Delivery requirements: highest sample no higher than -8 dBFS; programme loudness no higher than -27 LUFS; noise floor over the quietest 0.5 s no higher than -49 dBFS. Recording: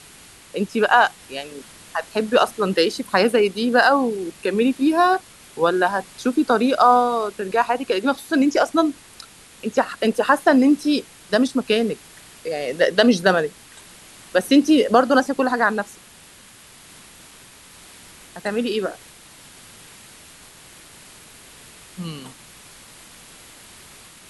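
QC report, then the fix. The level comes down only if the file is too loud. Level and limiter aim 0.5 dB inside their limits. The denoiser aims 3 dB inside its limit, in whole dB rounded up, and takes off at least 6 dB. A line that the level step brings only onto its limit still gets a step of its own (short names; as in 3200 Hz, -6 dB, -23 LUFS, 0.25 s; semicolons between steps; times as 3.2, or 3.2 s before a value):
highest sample -2.0 dBFS: fail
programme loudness -19.5 LUFS: fail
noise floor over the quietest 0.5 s -47 dBFS: fail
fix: gain -8 dB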